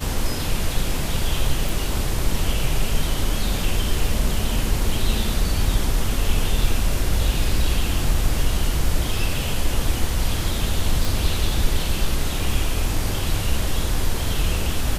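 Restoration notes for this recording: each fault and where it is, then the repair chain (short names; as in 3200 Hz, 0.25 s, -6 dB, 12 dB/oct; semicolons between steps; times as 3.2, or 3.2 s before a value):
1.69 pop
11.05 pop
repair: de-click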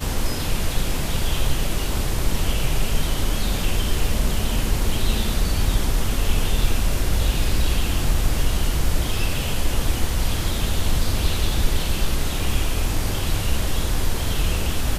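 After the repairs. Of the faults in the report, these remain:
none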